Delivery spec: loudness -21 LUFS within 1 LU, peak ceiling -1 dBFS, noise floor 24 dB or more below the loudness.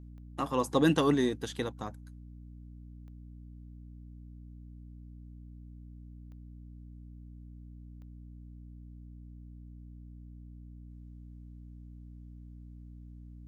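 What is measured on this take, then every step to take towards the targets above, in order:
clicks found 4; hum 60 Hz; highest harmonic 300 Hz; hum level -46 dBFS; loudness -30.0 LUFS; peak level -13.0 dBFS; loudness target -21.0 LUFS
-> de-click; hum notches 60/120/180/240/300 Hz; trim +9 dB

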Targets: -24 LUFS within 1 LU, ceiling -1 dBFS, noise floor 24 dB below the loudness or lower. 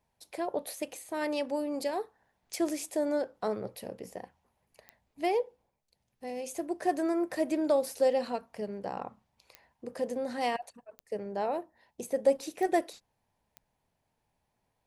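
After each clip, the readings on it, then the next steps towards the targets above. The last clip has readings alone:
clicks found 6; loudness -32.5 LUFS; peak level -13.0 dBFS; loudness target -24.0 LUFS
-> de-click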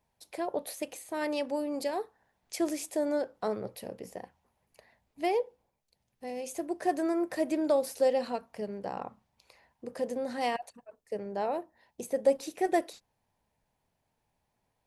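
clicks found 0; loudness -32.5 LUFS; peak level -13.0 dBFS; loudness target -24.0 LUFS
-> trim +8.5 dB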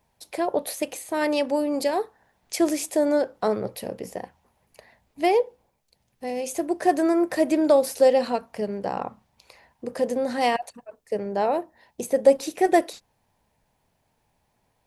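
loudness -24.0 LUFS; peak level -4.5 dBFS; noise floor -71 dBFS

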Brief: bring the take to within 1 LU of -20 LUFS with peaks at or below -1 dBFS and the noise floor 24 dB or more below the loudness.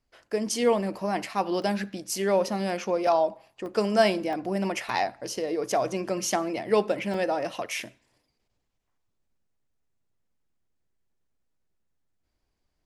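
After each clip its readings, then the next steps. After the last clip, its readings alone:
dropouts 6; longest dropout 1.7 ms; loudness -27.5 LUFS; peak level -8.5 dBFS; loudness target -20.0 LUFS
-> interpolate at 1.62/3.07/3.66/4.33/4.89/7.14 s, 1.7 ms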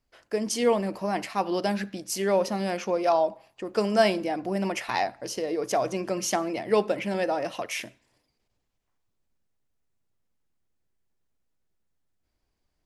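dropouts 0; loudness -27.0 LUFS; peak level -8.5 dBFS; loudness target -20.0 LUFS
-> trim +7 dB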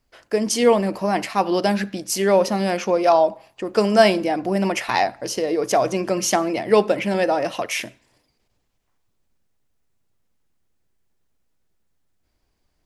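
loudness -20.0 LUFS; peak level -1.5 dBFS; noise floor -69 dBFS

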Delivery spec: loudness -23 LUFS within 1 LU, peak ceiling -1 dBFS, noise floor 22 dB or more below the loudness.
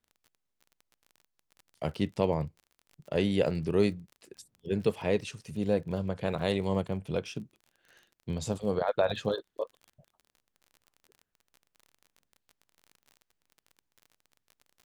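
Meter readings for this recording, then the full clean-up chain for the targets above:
tick rate 34 per s; loudness -31.5 LUFS; peak level -11.5 dBFS; loudness target -23.0 LUFS
-> de-click; trim +8.5 dB

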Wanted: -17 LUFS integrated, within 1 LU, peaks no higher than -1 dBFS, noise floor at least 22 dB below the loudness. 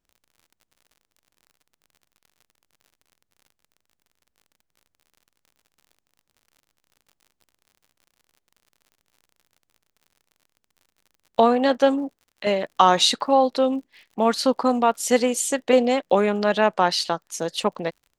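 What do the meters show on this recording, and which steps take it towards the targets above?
tick rate 57 per s; loudness -21.0 LUFS; peak level -2.5 dBFS; loudness target -17.0 LUFS
-> de-click; trim +4 dB; peak limiter -1 dBFS

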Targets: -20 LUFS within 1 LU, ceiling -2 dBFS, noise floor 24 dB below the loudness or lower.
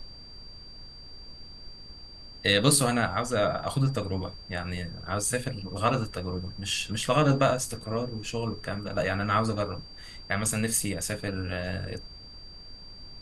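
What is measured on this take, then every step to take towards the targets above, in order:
steady tone 4.7 kHz; tone level -46 dBFS; noise floor -47 dBFS; noise floor target -52 dBFS; loudness -28.0 LUFS; peak level -8.0 dBFS; loudness target -20.0 LUFS
-> band-stop 4.7 kHz, Q 30; noise print and reduce 6 dB; trim +8 dB; peak limiter -2 dBFS

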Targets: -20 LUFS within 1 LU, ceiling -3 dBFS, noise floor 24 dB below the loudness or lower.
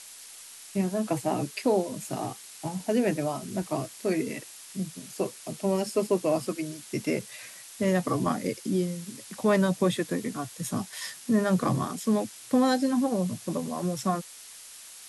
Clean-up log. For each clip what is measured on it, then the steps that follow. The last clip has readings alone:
noise floor -47 dBFS; noise floor target -53 dBFS; loudness -29.0 LUFS; peak level -12.5 dBFS; loudness target -20.0 LUFS
-> noise reduction 6 dB, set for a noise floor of -47 dBFS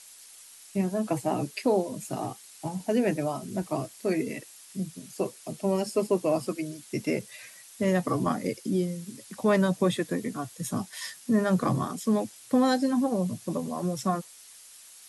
noise floor -51 dBFS; noise floor target -53 dBFS
-> noise reduction 6 dB, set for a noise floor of -51 dBFS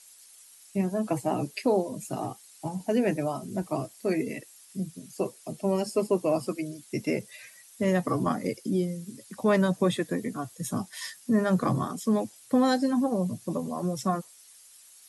noise floor -54 dBFS; loudness -29.0 LUFS; peak level -12.5 dBFS; loudness target -20.0 LUFS
-> trim +9 dB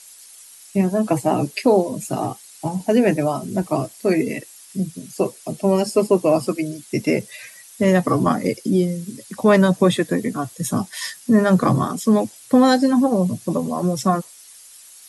loudness -20.0 LUFS; peak level -3.5 dBFS; noise floor -45 dBFS

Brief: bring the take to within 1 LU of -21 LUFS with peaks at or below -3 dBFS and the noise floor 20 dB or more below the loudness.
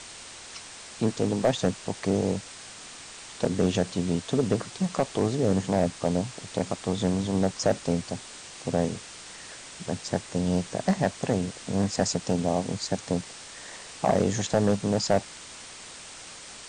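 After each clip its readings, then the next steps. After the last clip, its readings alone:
clipped samples 0.3%; clipping level -13.5 dBFS; noise floor -44 dBFS; noise floor target -48 dBFS; loudness -27.5 LUFS; peak level -13.5 dBFS; loudness target -21.0 LUFS
-> clip repair -13.5 dBFS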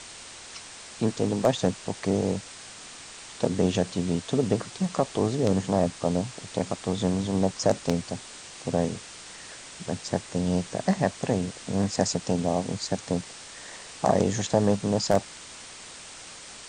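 clipped samples 0.0%; noise floor -44 dBFS; noise floor target -47 dBFS
-> noise reduction 6 dB, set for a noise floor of -44 dBFS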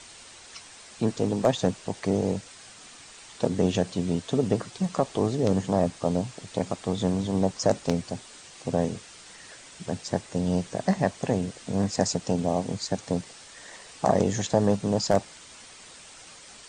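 noise floor -48 dBFS; loudness -27.0 LUFS; peak level -5.0 dBFS; loudness target -21.0 LUFS
-> trim +6 dB; peak limiter -3 dBFS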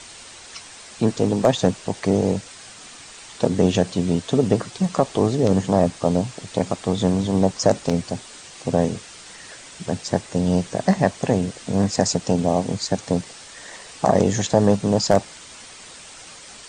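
loudness -21.5 LUFS; peak level -3.0 dBFS; noise floor -42 dBFS

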